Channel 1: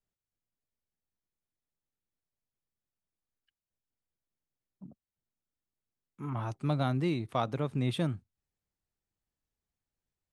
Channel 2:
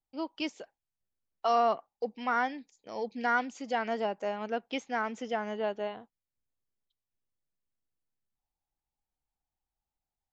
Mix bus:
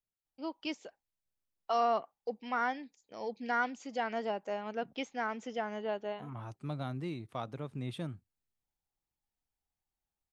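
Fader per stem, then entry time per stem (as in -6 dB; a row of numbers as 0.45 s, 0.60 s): -8.5 dB, -3.5 dB; 0.00 s, 0.25 s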